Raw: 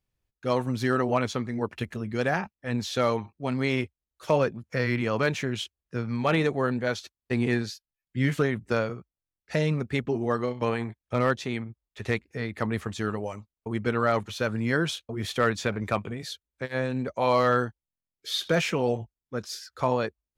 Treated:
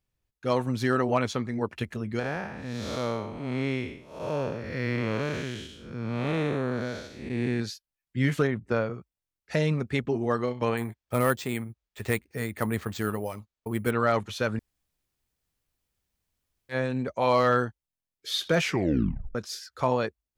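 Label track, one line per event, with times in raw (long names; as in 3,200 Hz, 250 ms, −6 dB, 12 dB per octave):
2.190000	7.600000	spectrum smeared in time width 272 ms
8.470000	8.940000	high-shelf EQ 3,300 Hz −12 dB
10.770000	13.910000	bad sample-rate conversion rate divided by 4×, down none, up hold
14.590000	16.690000	fill with room tone
18.630000	18.630000	tape stop 0.72 s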